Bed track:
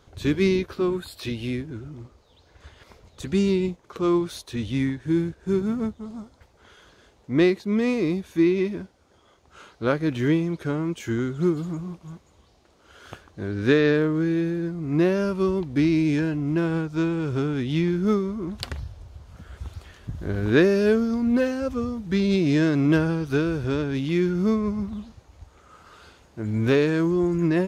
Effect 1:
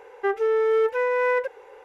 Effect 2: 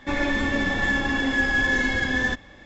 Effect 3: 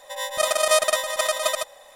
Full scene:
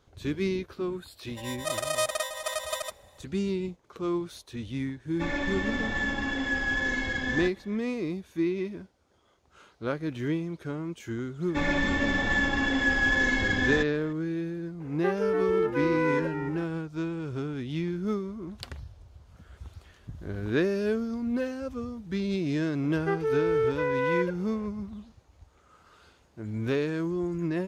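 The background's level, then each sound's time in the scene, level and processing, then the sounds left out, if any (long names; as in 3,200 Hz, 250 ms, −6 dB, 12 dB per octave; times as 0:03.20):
bed track −8 dB
0:01.27: mix in 3 −9 dB
0:05.13: mix in 2 −6.5 dB
0:11.48: mix in 2 −2.5 dB
0:14.80: mix in 1 −5.5 dB + echo with shifted repeats 294 ms, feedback 47%, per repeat −93 Hz, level −9 dB
0:22.83: mix in 1 −5 dB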